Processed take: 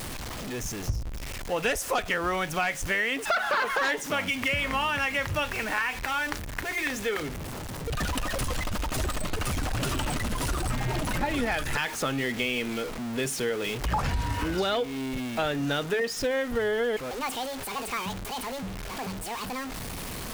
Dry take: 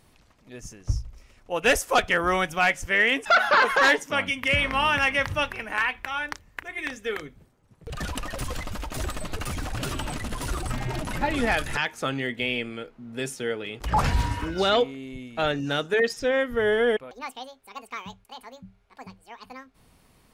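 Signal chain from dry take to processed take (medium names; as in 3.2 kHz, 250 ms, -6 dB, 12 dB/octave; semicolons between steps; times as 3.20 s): jump at every zero crossing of -30.5 dBFS; compression, threshold -24 dBFS, peak gain reduction 9 dB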